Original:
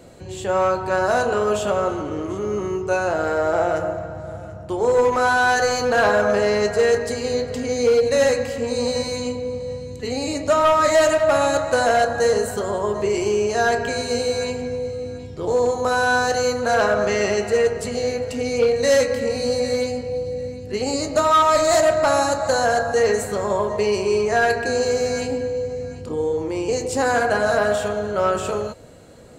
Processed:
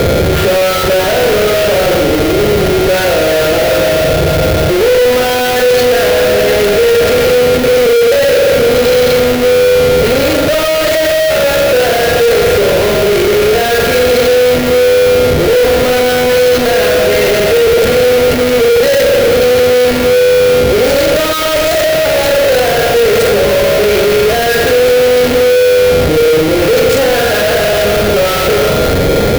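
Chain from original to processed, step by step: flutter echo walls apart 7.6 m, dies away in 0.74 s; whine 1400 Hz -30 dBFS; bell 2200 Hz +3 dB 0.97 oct; Schmitt trigger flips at -29 dBFS; graphic EQ 250/500/1000/8000 Hz -5/+6/-11/-7 dB; gain +8.5 dB

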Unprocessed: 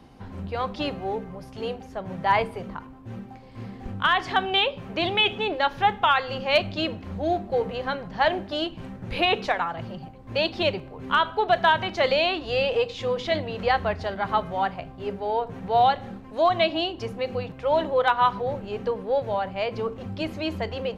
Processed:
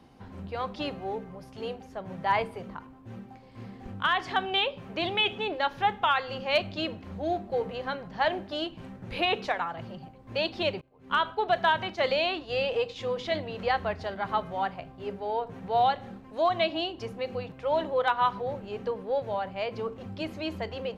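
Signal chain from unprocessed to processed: 10.81–12.96 expander -29 dBFS; low shelf 62 Hz -7 dB; gain -4.5 dB

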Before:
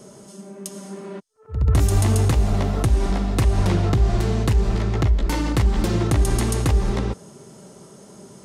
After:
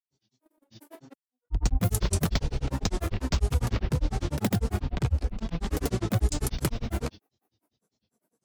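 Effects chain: gate -34 dBFS, range -26 dB; high shelf 5500 Hz +8.5 dB; grains 0.1 s, grains 10/s, pitch spread up and down by 12 st; gain -4.5 dB

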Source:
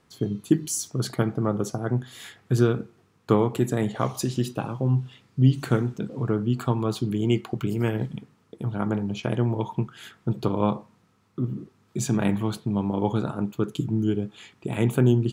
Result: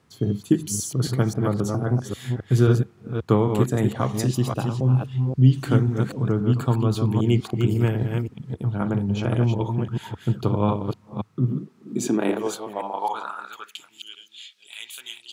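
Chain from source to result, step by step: reverse delay 0.267 s, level -4.5 dB; high-pass sweep 81 Hz -> 3400 Hz, 11.04–14.2

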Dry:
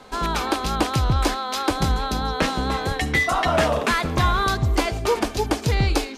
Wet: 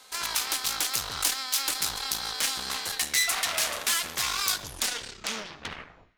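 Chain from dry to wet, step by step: tape stop at the end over 1.74 s; added harmonics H 5 -11 dB, 8 -7 dB, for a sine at -6.5 dBFS; in parallel at -11 dB: soft clip -22 dBFS, distortion -5 dB; on the sum: pre-emphasis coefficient 0.97; on a send at -17 dB: reverb RT60 1.1 s, pre-delay 47 ms; on the sum: gain -4 dB

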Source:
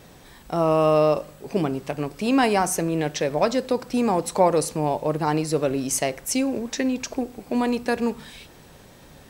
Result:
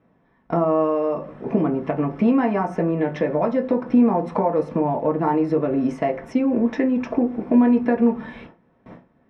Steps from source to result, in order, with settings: compressor 8:1, threshold -26 dBFS, peak gain reduction 13.5 dB; Bessel low-pass 1600 Hz, order 2; gate with hold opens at -37 dBFS; low shelf 280 Hz +6 dB; reverb RT60 0.25 s, pre-delay 3 ms, DRR 0.5 dB

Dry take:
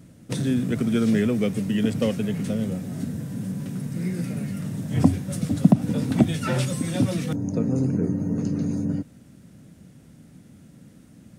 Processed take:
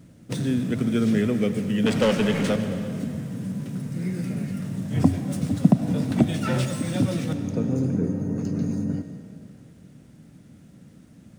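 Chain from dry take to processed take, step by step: median filter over 3 samples; 1.86–2.56 overdrive pedal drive 22 dB, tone 3300 Hz, clips at -10.5 dBFS; reverb RT60 2.6 s, pre-delay 60 ms, DRR 9 dB; gain -1 dB

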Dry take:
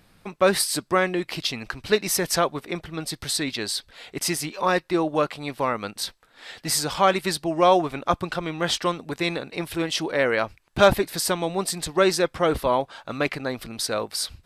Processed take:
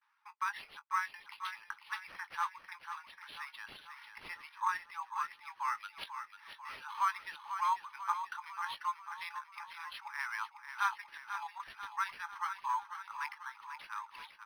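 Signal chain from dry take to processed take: Chebyshev high-pass 840 Hz, order 10; gate with hold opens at -53 dBFS; reverb removal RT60 0.72 s; 3.64–4.49 overdrive pedal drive 10 dB, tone 2600 Hz, clips at -14.5 dBFS; 5.5–6.04 tilt +4.5 dB/oct; 11.01–11.6 negative-ratio compressor -35 dBFS, ratio -0.5; tape spacing loss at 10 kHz 36 dB; doubler 20 ms -13 dB; feedback echo 0.493 s, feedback 55%, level -9 dB; decimation joined by straight lines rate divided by 6×; gain -3.5 dB

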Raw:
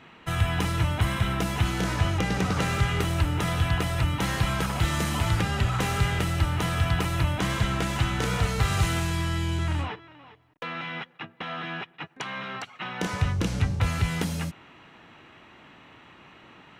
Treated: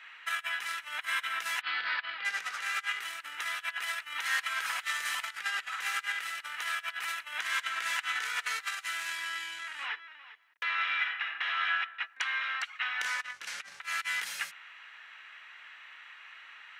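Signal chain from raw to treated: 1.61–2.25 Chebyshev low-pass 4700 Hz, order 6; negative-ratio compressor -28 dBFS, ratio -0.5; resonant high-pass 1700 Hz, resonance Q 2.2; 10.63–11.64 reverb throw, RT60 0.96 s, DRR -0.5 dB; gain -3.5 dB

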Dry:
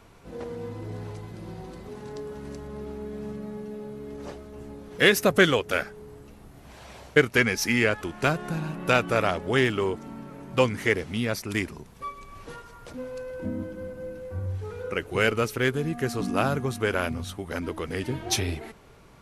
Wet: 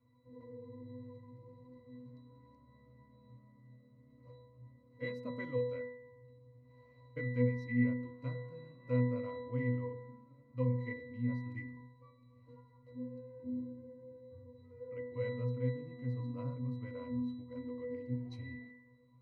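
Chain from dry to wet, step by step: octave resonator B, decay 0.8 s; de-hum 47.11 Hz, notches 31; gain +5.5 dB

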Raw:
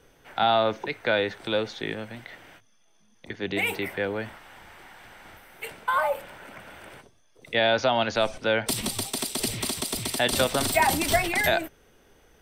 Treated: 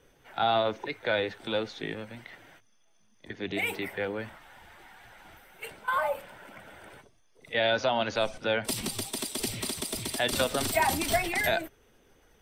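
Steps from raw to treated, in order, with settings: bin magnitudes rounded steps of 15 dB; pre-echo 39 ms -21 dB; gain -3.5 dB

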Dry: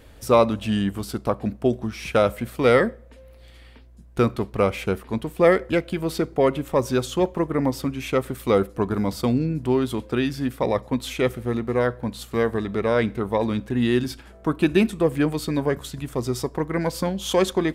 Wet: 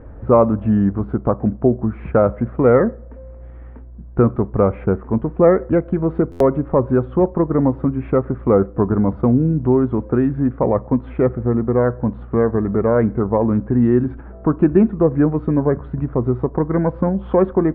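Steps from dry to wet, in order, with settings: inverse Chebyshev low-pass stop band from 6100 Hz, stop band 70 dB; low shelf 410 Hz +5.5 dB; in parallel at +0.5 dB: compressor, threshold -24 dBFS, peak gain reduction 14 dB; on the sum: stuck buffer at 6.31, samples 512, times 7

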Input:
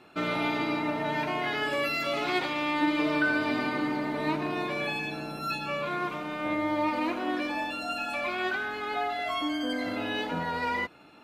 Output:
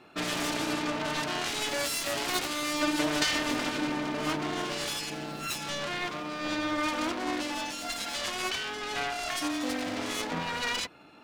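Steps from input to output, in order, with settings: self-modulated delay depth 0.65 ms

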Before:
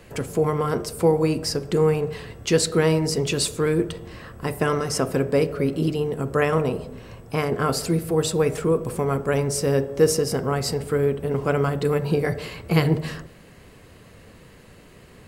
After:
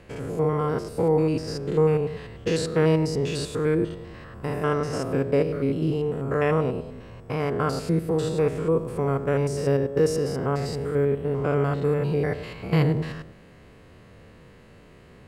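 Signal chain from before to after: stepped spectrum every 0.1 s; LPF 3000 Hz 6 dB/oct

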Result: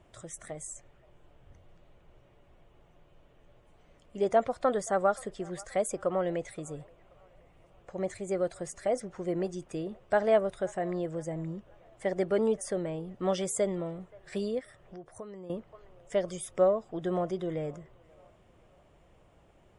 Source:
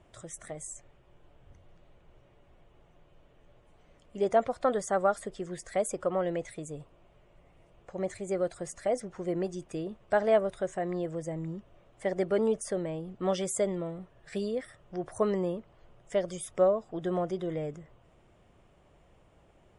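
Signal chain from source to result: band-limited delay 0.526 s, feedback 43%, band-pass 1100 Hz, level -22 dB; 14.59–15.5 compressor 3:1, threshold -47 dBFS, peak gain reduction 18.5 dB

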